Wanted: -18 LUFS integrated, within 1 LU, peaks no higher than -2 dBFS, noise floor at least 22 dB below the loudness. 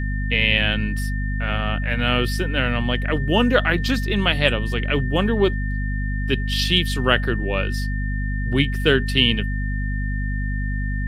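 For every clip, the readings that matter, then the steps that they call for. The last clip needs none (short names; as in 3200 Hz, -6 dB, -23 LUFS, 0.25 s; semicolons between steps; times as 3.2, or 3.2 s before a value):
hum 50 Hz; harmonics up to 250 Hz; hum level -21 dBFS; steady tone 1800 Hz; tone level -32 dBFS; loudness -21.5 LUFS; peak -1.5 dBFS; loudness target -18.0 LUFS
-> de-hum 50 Hz, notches 5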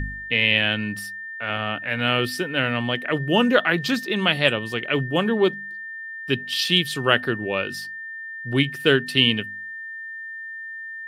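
hum none; steady tone 1800 Hz; tone level -32 dBFS
-> notch 1800 Hz, Q 30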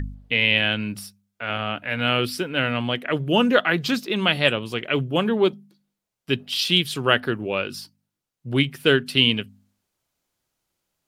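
steady tone none; loudness -22.0 LUFS; peak -2.0 dBFS; loudness target -18.0 LUFS
-> gain +4 dB; limiter -2 dBFS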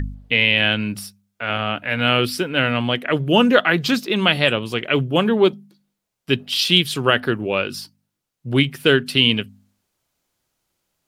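loudness -18.5 LUFS; peak -2.0 dBFS; noise floor -80 dBFS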